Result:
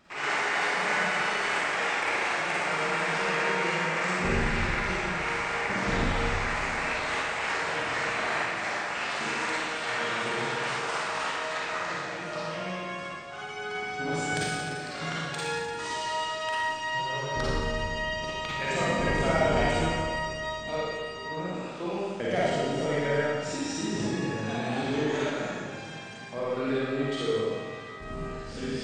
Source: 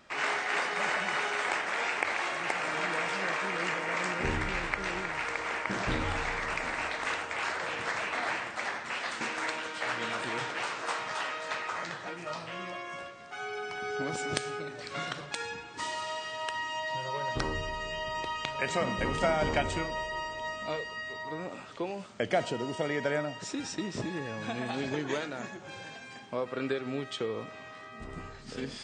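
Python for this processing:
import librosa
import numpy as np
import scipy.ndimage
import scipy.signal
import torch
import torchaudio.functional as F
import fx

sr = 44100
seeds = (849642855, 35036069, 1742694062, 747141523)

p1 = fx.low_shelf(x, sr, hz=220.0, db=4.5)
p2 = 10.0 ** (-26.0 / 20.0) * np.tanh(p1 / 10.0 ** (-26.0 / 20.0))
p3 = p1 + (p2 * 10.0 ** (-5.5 / 20.0))
p4 = fx.rev_schroeder(p3, sr, rt60_s=1.5, comb_ms=38, drr_db=-7.5)
y = p4 * 10.0 ** (-7.5 / 20.0)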